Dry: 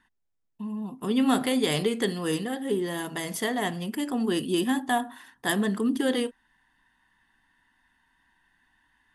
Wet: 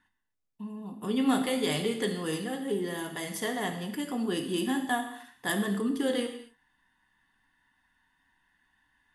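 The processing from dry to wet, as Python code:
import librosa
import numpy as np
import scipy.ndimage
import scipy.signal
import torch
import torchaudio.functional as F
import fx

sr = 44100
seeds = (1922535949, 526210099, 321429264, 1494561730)

y = fx.rev_gated(x, sr, seeds[0], gate_ms=290, shape='falling', drr_db=4.0)
y = F.gain(torch.from_numpy(y), -4.5).numpy()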